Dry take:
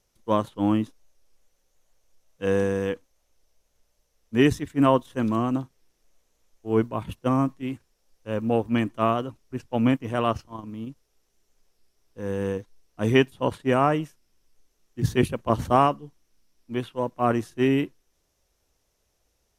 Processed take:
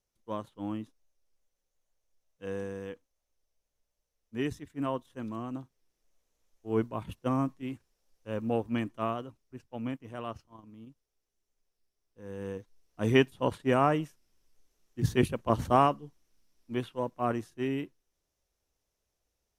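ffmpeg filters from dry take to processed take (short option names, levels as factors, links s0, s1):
-af "volume=1.58,afade=t=in:st=5.39:d=1.42:silence=0.446684,afade=t=out:st=8.51:d=1.17:silence=0.398107,afade=t=in:st=12.23:d=0.93:silence=0.298538,afade=t=out:st=16.79:d=0.77:silence=0.473151"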